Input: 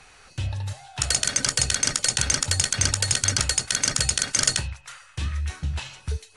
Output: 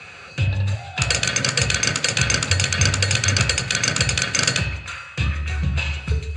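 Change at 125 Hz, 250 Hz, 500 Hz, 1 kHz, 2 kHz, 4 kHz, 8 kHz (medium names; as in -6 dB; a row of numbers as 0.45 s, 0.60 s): +8.0 dB, +8.0 dB, +8.0 dB, +6.0 dB, +9.0 dB, +3.5 dB, -1.0 dB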